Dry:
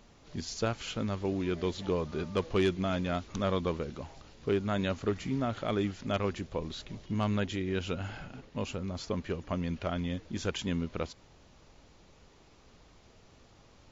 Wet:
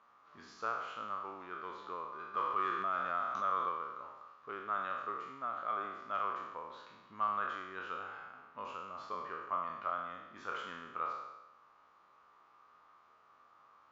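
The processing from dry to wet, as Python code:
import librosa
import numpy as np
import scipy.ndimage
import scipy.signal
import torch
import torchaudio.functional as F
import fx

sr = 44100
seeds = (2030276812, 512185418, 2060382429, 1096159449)

y = fx.spec_trails(x, sr, decay_s=1.07)
y = fx.rider(y, sr, range_db=3, speed_s=2.0)
y = fx.bandpass_q(y, sr, hz=1200.0, q=7.0)
y = fx.env_flatten(y, sr, amount_pct=50, at=(2.34, 3.69))
y = y * librosa.db_to_amplitude(5.5)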